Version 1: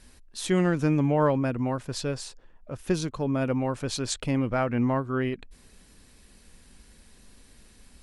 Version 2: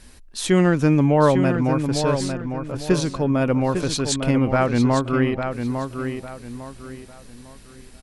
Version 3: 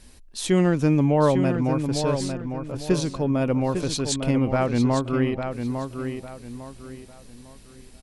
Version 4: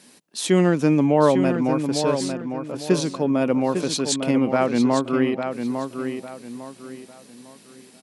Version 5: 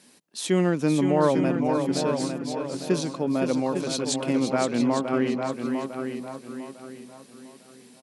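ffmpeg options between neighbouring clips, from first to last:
-filter_complex "[0:a]asplit=2[s0][s1];[s1]adelay=852,lowpass=f=4800:p=1,volume=0.447,asplit=2[s2][s3];[s3]adelay=852,lowpass=f=4800:p=1,volume=0.32,asplit=2[s4][s5];[s5]adelay=852,lowpass=f=4800:p=1,volume=0.32,asplit=2[s6][s7];[s7]adelay=852,lowpass=f=4800:p=1,volume=0.32[s8];[s0][s2][s4][s6][s8]amix=inputs=5:normalize=0,volume=2.11"
-af "equalizer=f=1500:w=1.5:g=-4.5,volume=0.75"
-af "highpass=f=170:w=0.5412,highpass=f=170:w=1.3066,volume=1.41"
-af "aecho=1:1:516:0.447,volume=0.596"

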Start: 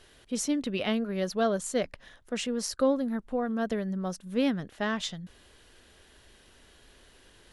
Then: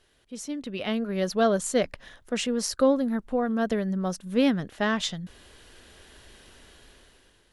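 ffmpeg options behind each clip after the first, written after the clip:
-af "dynaudnorm=f=380:g=5:m=5.01,volume=0.398"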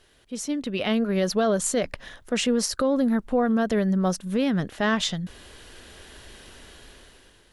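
-af "alimiter=limit=0.1:level=0:latency=1:release=57,volume=1.88"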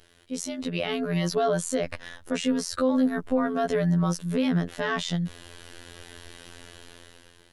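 -af "afftfilt=real='hypot(re,im)*cos(PI*b)':imag='0':win_size=2048:overlap=0.75,alimiter=limit=0.141:level=0:latency=1:release=18,volume=1.58"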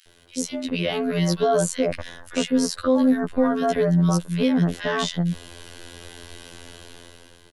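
-filter_complex "[0:a]acrossover=split=1600[s0][s1];[s0]adelay=60[s2];[s2][s1]amix=inputs=2:normalize=0,volume=1.68"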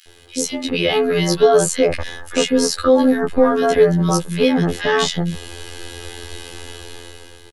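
-filter_complex "[0:a]asplit=2[s0][s1];[s1]adelay=14,volume=0.708[s2];[s0][s2]amix=inputs=2:normalize=0,volume=2"

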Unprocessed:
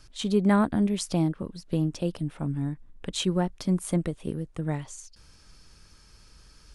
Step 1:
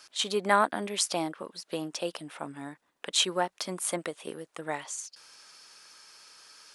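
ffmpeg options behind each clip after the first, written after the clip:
-af "highpass=670,volume=2"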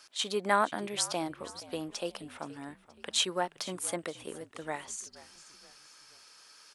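-filter_complex "[0:a]asplit=4[s0][s1][s2][s3];[s1]adelay=474,afreqshift=-61,volume=0.126[s4];[s2]adelay=948,afreqshift=-122,volume=0.0531[s5];[s3]adelay=1422,afreqshift=-183,volume=0.0221[s6];[s0][s4][s5][s6]amix=inputs=4:normalize=0,volume=0.708"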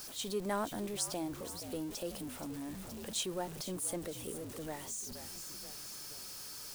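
-af "aeval=exprs='val(0)+0.5*0.0188*sgn(val(0))':c=same,equalizer=f=1800:w=0.35:g=-12.5,volume=0.794"

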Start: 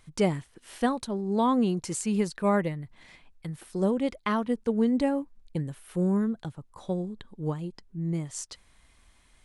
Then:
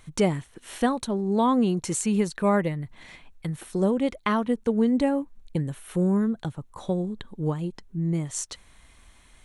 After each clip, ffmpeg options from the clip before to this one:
-filter_complex "[0:a]bandreject=f=4900:w=7.4,asplit=2[s0][s1];[s1]acompressor=threshold=0.0251:ratio=6,volume=1.06[s2];[s0][s2]amix=inputs=2:normalize=0"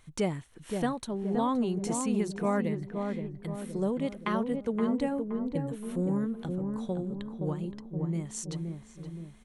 -filter_complex "[0:a]asplit=2[s0][s1];[s1]adelay=521,lowpass=f=950:p=1,volume=0.631,asplit=2[s2][s3];[s3]adelay=521,lowpass=f=950:p=1,volume=0.55,asplit=2[s4][s5];[s5]adelay=521,lowpass=f=950:p=1,volume=0.55,asplit=2[s6][s7];[s7]adelay=521,lowpass=f=950:p=1,volume=0.55,asplit=2[s8][s9];[s9]adelay=521,lowpass=f=950:p=1,volume=0.55,asplit=2[s10][s11];[s11]adelay=521,lowpass=f=950:p=1,volume=0.55,asplit=2[s12][s13];[s13]adelay=521,lowpass=f=950:p=1,volume=0.55[s14];[s0][s2][s4][s6][s8][s10][s12][s14]amix=inputs=8:normalize=0,volume=0.447"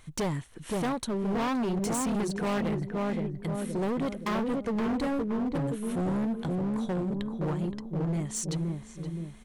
-af "asoftclip=type=hard:threshold=0.0251,volume=1.88"

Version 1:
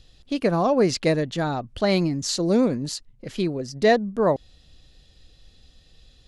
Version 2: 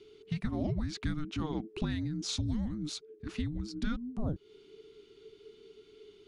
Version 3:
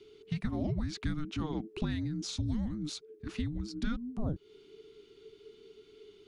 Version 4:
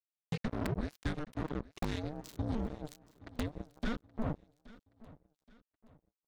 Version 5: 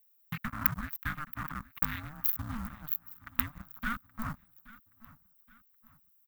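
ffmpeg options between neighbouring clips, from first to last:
-af "highshelf=f=5000:g=-8,acompressor=threshold=0.0398:ratio=4,afreqshift=-450,volume=0.668"
-filter_complex "[0:a]acrossover=split=340[s0][s1];[s1]acompressor=threshold=0.0141:ratio=6[s2];[s0][s2]amix=inputs=2:normalize=0"
-filter_complex "[0:a]acrossover=split=150|1000[s0][s1][s2];[s1]aeval=exprs='(mod(22.4*val(0)+1,2)-1)/22.4':c=same[s3];[s0][s3][s2]amix=inputs=3:normalize=0,acrusher=bits=4:mix=0:aa=0.5,aecho=1:1:824|1648|2472:0.1|0.041|0.0168,volume=0.708"
-af "aexciter=amount=9.4:drive=8.8:freq=11000,firequalizer=gain_entry='entry(250,0);entry(370,-26);entry(580,-13);entry(1200,14);entry(8500,-30);entry(14000,9)':delay=0.05:min_phase=1,acrusher=bits=5:mode=log:mix=0:aa=0.000001,volume=0.75"

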